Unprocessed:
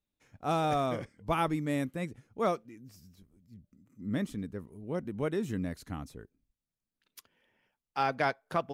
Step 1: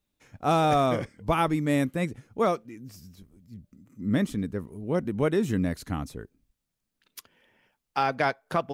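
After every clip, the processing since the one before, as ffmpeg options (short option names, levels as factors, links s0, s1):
-af "alimiter=limit=0.0944:level=0:latency=1:release=388,volume=2.51"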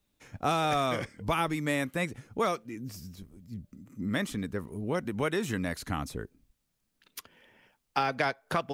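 -filter_complex "[0:a]acrossover=split=640|1300|3100[s0][s1][s2][s3];[s0]acompressor=threshold=0.0158:ratio=4[s4];[s1]acompressor=threshold=0.0112:ratio=4[s5];[s2]acompressor=threshold=0.0158:ratio=4[s6];[s3]acompressor=threshold=0.00631:ratio=4[s7];[s4][s5][s6][s7]amix=inputs=4:normalize=0,volume=1.58"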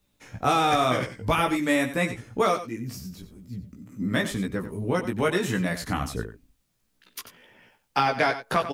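-af "flanger=delay=15.5:depth=2.1:speed=2,aecho=1:1:92:0.251,volume=2.66"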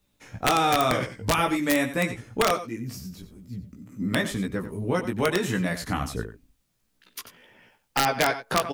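-af "aeval=exprs='(mod(3.98*val(0)+1,2)-1)/3.98':c=same"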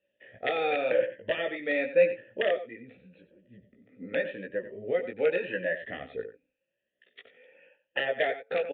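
-filter_complex "[0:a]afftfilt=real='re*pow(10,10/40*sin(2*PI*(1.3*log(max(b,1)*sr/1024/100)/log(2)-(0.89)*(pts-256)/sr)))':imag='im*pow(10,10/40*sin(2*PI*(1.3*log(max(b,1)*sr/1024/100)/log(2)-(0.89)*(pts-256)/sr)))':win_size=1024:overlap=0.75,asplit=3[s0][s1][s2];[s0]bandpass=f=530:t=q:w=8,volume=1[s3];[s1]bandpass=f=1840:t=q:w=8,volume=0.501[s4];[s2]bandpass=f=2480:t=q:w=8,volume=0.355[s5];[s3][s4][s5]amix=inputs=3:normalize=0,aresample=8000,aresample=44100,volume=2"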